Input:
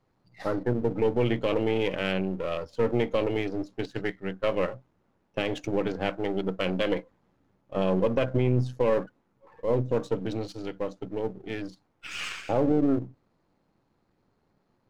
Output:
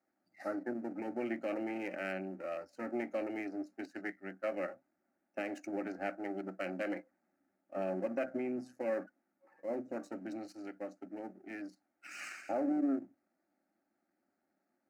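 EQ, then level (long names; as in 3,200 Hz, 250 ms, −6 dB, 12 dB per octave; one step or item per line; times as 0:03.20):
high-pass filter 230 Hz 12 dB per octave
phaser with its sweep stopped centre 680 Hz, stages 8
−6.0 dB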